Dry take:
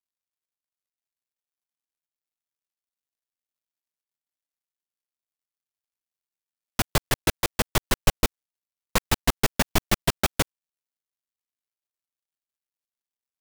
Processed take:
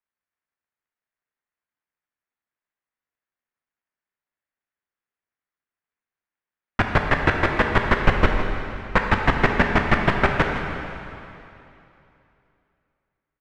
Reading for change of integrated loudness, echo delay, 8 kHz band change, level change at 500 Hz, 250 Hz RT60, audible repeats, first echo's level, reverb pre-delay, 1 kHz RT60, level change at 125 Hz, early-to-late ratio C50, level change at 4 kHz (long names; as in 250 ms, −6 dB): +4.5 dB, 161 ms, below −15 dB, +6.5 dB, 2.8 s, 1, −13.0 dB, 6 ms, 2.9 s, +5.5 dB, 3.0 dB, −3.5 dB